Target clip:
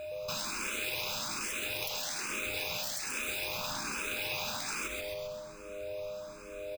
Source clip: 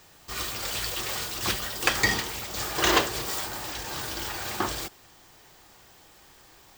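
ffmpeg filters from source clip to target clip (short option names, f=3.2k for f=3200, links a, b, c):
-filter_complex "[0:a]highshelf=f=7.2k:g=-7,aecho=1:1:0.8:0.94,bandreject=f=50.36:t=h:w=4,bandreject=f=100.72:t=h:w=4,bandreject=f=151.08:t=h:w=4,bandreject=f=201.44:t=h:w=4,bandreject=f=251.8:t=h:w=4,bandreject=f=302.16:t=h:w=4,bandreject=f=352.52:t=h:w=4,bandreject=f=402.88:t=h:w=4,bandreject=f=453.24:t=h:w=4,bandreject=f=503.6:t=h:w=4,bandreject=f=553.96:t=h:w=4,bandreject=f=604.32:t=h:w=4,bandreject=f=654.68:t=h:w=4,bandreject=f=705.04:t=h:w=4,bandreject=f=755.4:t=h:w=4,bandreject=f=805.76:t=h:w=4,asplit=2[a][b];[b]acrusher=bits=3:dc=4:mix=0:aa=0.000001,volume=-3dB[c];[a][c]amix=inputs=2:normalize=0,afftfilt=real='re*lt(hypot(re,im),0.0891)':imag='im*lt(hypot(re,im),0.0891)':win_size=1024:overlap=0.75,aeval=exprs='val(0)+0.0112*sin(2*PI*610*n/s)':c=same,asplit=7[d][e][f][g][h][i][j];[e]adelay=132,afreqshift=-99,volume=-6dB[k];[f]adelay=264,afreqshift=-198,volume=-12.6dB[l];[g]adelay=396,afreqshift=-297,volume=-19.1dB[m];[h]adelay=528,afreqshift=-396,volume=-25.7dB[n];[i]adelay=660,afreqshift=-495,volume=-32.2dB[o];[j]adelay=792,afreqshift=-594,volume=-38.8dB[p];[d][k][l][m][n][o][p]amix=inputs=7:normalize=0,acompressor=threshold=-33dB:ratio=6,equalizer=f=2.5k:w=8:g=9,asplit=2[q][r];[r]afreqshift=1.2[s];[q][s]amix=inputs=2:normalize=1,volume=2dB"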